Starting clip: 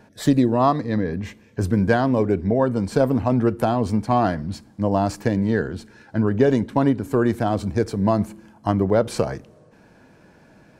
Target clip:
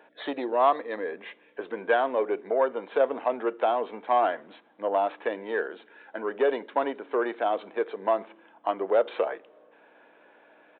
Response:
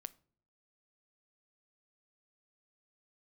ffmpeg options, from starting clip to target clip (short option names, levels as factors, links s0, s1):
-af "aeval=exprs='val(0)+0.00891*(sin(2*PI*60*n/s)+sin(2*PI*2*60*n/s)/2+sin(2*PI*3*60*n/s)/3+sin(2*PI*4*60*n/s)/4+sin(2*PI*5*60*n/s)/5)':c=same,acontrast=50,aresample=8000,aresample=44100,highpass=f=430:w=0.5412,highpass=f=430:w=1.3066,volume=0.447"